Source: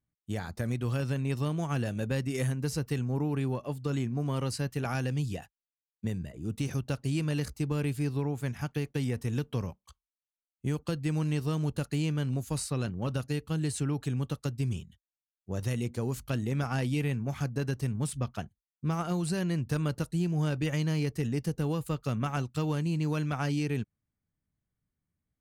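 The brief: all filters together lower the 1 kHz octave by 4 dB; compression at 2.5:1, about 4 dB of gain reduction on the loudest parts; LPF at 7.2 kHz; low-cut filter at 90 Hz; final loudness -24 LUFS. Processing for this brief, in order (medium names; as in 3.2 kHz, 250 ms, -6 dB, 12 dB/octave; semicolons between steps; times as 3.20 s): high-pass 90 Hz; low-pass 7.2 kHz; peaking EQ 1 kHz -5.5 dB; compression 2.5:1, threshold -32 dBFS; trim +12.5 dB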